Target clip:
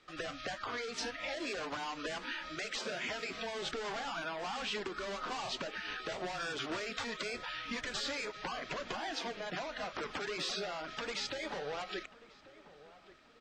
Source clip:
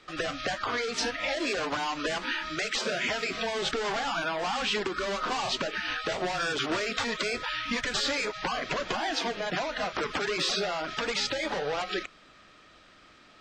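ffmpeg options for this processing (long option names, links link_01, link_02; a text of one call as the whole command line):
ffmpeg -i in.wav -filter_complex "[0:a]asplit=2[link_01][link_02];[link_02]adelay=1137,lowpass=frequency=1600:poles=1,volume=-17.5dB,asplit=2[link_03][link_04];[link_04]adelay=1137,lowpass=frequency=1600:poles=1,volume=0.48,asplit=2[link_05][link_06];[link_06]adelay=1137,lowpass=frequency=1600:poles=1,volume=0.48,asplit=2[link_07][link_08];[link_08]adelay=1137,lowpass=frequency=1600:poles=1,volume=0.48[link_09];[link_01][link_03][link_05][link_07][link_09]amix=inputs=5:normalize=0,volume=-9dB" out.wav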